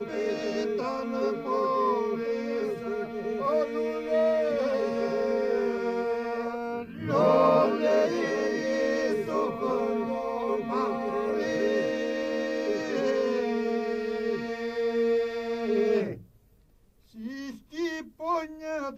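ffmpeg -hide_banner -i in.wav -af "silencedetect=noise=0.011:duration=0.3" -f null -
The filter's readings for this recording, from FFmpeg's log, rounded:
silence_start: 16.21
silence_end: 17.18 | silence_duration: 0.96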